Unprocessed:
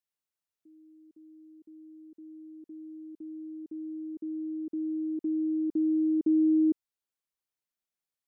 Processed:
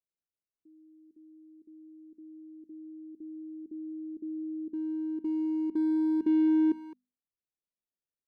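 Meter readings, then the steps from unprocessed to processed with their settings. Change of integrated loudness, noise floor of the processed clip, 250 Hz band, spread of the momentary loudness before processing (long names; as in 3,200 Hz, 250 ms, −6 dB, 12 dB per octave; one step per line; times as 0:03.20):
−0.5 dB, below −85 dBFS, −1.0 dB, 22 LU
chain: adaptive Wiener filter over 41 samples
mains-hum notches 50/100/150/200/250 Hz
far-end echo of a speakerphone 210 ms, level −14 dB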